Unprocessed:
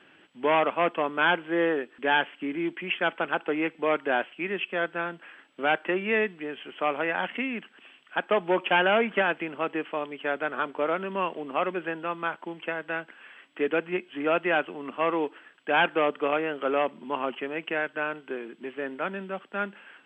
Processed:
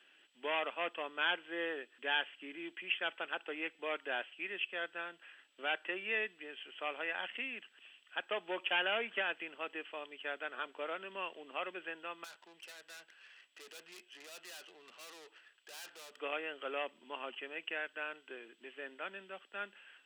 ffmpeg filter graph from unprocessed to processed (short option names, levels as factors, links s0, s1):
-filter_complex "[0:a]asettb=1/sr,asplit=3[s0][s1][s2];[s0]atrim=end=12.244[s3];[s1]atrim=start=12.24:end=16.17,asetpts=PTS-STARTPTS,afade=t=in:d=0.004:c=qsin,afade=t=out:st=3.926:d=0.004:c=qsin,equalizer=f=280:w=5.2:g=-9.5,aeval=exprs='(tanh(100*val(0)+0.4)-tanh(0.4))/100':c=same[s4];[s2]atrim=start=16.166[s5];[s3][s4]acrossfade=d=0.004:c1=hsin:c2=qsin[s6];[s6][s5]acrossfade=d=0.004:c1=qsin:c2=hsin,highpass=700,equalizer=f=990:t=o:w=2.2:g=-14,bandreject=f=2200:w=14"